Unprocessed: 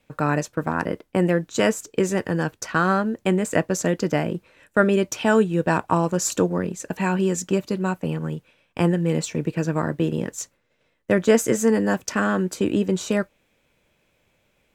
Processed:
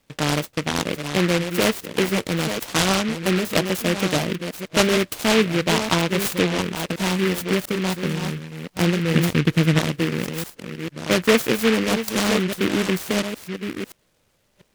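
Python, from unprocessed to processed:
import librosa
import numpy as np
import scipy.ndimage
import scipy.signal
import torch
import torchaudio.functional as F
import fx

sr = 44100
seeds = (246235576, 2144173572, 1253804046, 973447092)

y = fx.reverse_delay(x, sr, ms=696, wet_db=-8.0)
y = fx.low_shelf(y, sr, hz=290.0, db=10.0, at=(9.15, 9.79))
y = fx.noise_mod_delay(y, sr, seeds[0], noise_hz=2000.0, depth_ms=0.18)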